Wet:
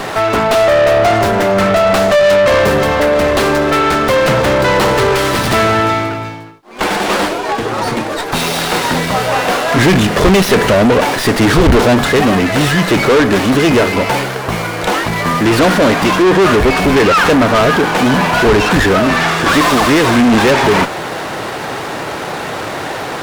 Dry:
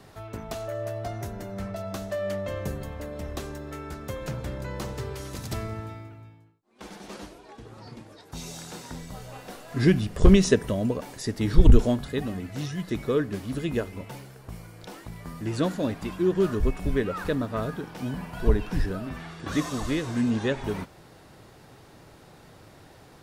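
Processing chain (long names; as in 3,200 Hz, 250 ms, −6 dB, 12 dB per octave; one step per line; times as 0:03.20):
mid-hump overdrive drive 40 dB, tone 4,100 Hz, clips at −3.5 dBFS
windowed peak hold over 5 samples
level +2 dB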